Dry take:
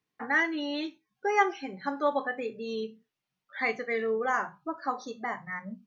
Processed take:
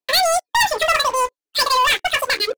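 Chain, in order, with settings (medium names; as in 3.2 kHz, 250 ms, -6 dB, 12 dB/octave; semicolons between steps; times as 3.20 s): wide varispeed 2.28×; waveshaping leveller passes 5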